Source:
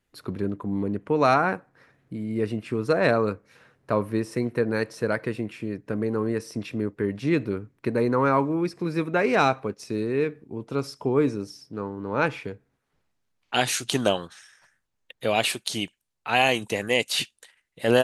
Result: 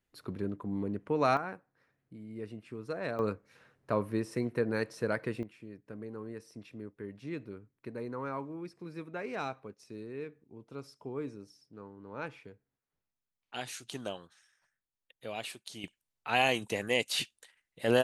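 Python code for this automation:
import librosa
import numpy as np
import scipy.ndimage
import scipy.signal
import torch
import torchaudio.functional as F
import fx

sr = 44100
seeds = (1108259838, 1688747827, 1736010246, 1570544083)

y = fx.gain(x, sr, db=fx.steps((0.0, -7.5), (1.37, -15.5), (3.19, -6.5), (5.43, -16.5), (15.84, -6.5)))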